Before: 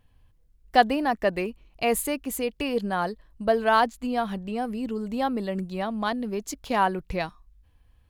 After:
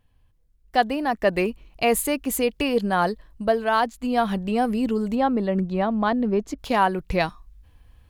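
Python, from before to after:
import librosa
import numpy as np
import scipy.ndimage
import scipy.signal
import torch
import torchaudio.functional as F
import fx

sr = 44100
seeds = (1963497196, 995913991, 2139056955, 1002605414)

y = fx.lowpass(x, sr, hz=fx.line((5.14, 1800.0), (6.58, 1100.0)), slope=6, at=(5.14, 6.58), fade=0.02)
y = fx.rider(y, sr, range_db=10, speed_s=0.5)
y = F.gain(torch.from_numpy(y), 3.5).numpy()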